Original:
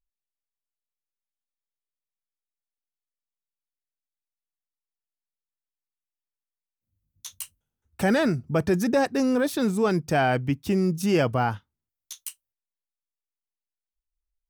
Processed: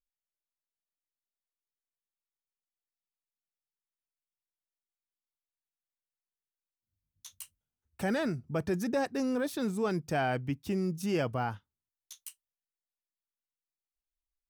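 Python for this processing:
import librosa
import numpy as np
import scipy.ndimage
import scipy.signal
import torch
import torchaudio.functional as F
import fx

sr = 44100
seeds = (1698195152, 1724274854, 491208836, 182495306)

y = fx.rider(x, sr, range_db=10, speed_s=2.0)
y = F.gain(torch.from_numpy(y), -8.0).numpy()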